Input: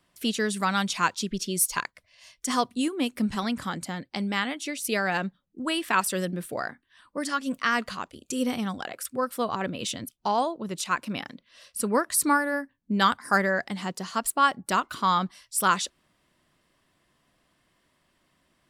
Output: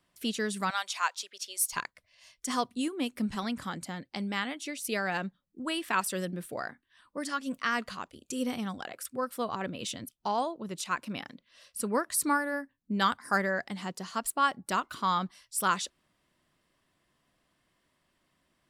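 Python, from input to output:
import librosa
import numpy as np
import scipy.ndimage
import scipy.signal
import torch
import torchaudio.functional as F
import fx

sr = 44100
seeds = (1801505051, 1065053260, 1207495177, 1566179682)

y = fx.highpass(x, sr, hz=620.0, slope=24, at=(0.7, 1.73))
y = y * librosa.db_to_amplitude(-5.0)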